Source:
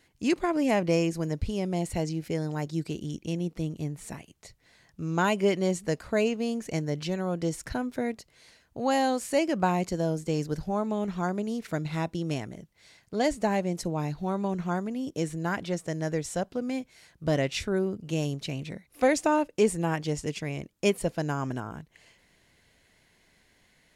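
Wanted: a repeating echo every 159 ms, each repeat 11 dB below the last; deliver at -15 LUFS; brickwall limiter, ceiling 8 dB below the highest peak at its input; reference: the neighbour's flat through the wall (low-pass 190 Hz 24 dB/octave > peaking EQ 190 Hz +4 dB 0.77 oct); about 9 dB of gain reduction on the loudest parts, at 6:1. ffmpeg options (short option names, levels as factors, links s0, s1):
-af "acompressor=threshold=0.0398:ratio=6,alimiter=limit=0.0631:level=0:latency=1,lowpass=f=190:w=0.5412,lowpass=f=190:w=1.3066,equalizer=f=190:t=o:w=0.77:g=4,aecho=1:1:159|318|477:0.282|0.0789|0.0221,volume=14.1"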